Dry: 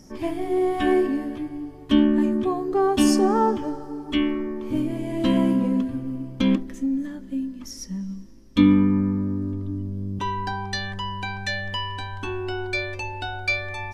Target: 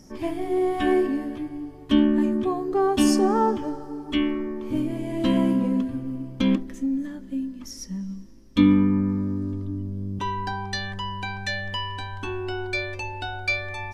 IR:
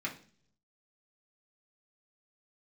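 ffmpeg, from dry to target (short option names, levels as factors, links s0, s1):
-filter_complex "[0:a]asettb=1/sr,asplit=3[s0][s1][s2];[s0]atrim=end=9.094[s3];[s1]atrim=start=9.09:end=9.65,asetpts=PTS-STARTPTS,afade=t=in:d=0.004:c=qsin,afade=t=out:st=0.556:d=0.004:c=qsin,equalizer=f=5400:t=o:w=2:g=4.5[s4];[s2]atrim=start=9.646[s5];[s3][s4]acrossfade=d=0.004:c1=hsin:c2=qsin[s6];[s6][s5]acrossfade=d=0.004:c1=qsin:c2=hsin,volume=0.891"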